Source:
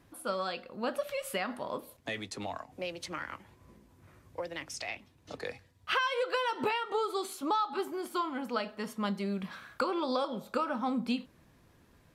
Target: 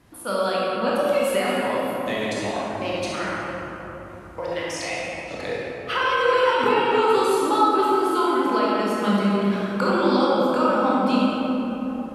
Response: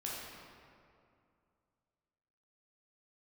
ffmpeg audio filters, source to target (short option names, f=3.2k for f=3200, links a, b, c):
-filter_complex "[1:a]atrim=start_sample=2205,asetrate=24696,aresample=44100[a];[0:a][a]afir=irnorm=-1:irlink=0,acrossover=split=1400[b][c];[c]alimiter=level_in=4dB:limit=-24dB:level=0:latency=1:release=65,volume=-4dB[d];[b][d]amix=inputs=2:normalize=0,volume=7dB"